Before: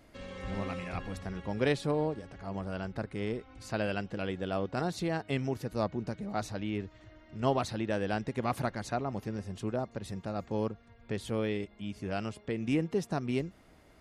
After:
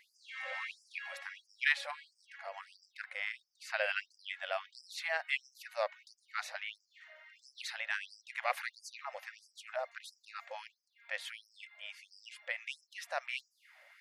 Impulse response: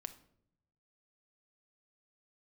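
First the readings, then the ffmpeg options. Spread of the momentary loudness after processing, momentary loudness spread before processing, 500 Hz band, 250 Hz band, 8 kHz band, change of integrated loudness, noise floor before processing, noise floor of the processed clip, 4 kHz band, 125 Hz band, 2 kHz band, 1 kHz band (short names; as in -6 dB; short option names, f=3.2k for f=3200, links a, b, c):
17 LU, 9 LU, -10.5 dB, under -40 dB, -3.0 dB, -5.0 dB, -59 dBFS, -78 dBFS, +1.5 dB, under -40 dB, +5.0 dB, -6.0 dB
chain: -af "equalizer=f=1k:t=o:w=1:g=-5,equalizer=f=2k:t=o:w=1:g=11,equalizer=f=8k:t=o:w=1:g=-5,afftfilt=real='re*gte(b*sr/1024,490*pow(4800/490,0.5+0.5*sin(2*PI*1.5*pts/sr)))':imag='im*gte(b*sr/1024,490*pow(4800/490,0.5+0.5*sin(2*PI*1.5*pts/sr)))':win_size=1024:overlap=0.75"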